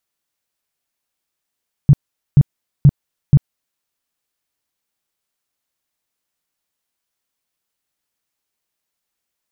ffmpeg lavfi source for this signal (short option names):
-f lavfi -i "aevalsrc='0.668*sin(2*PI*142*mod(t,0.48))*lt(mod(t,0.48),6/142)':d=1.92:s=44100"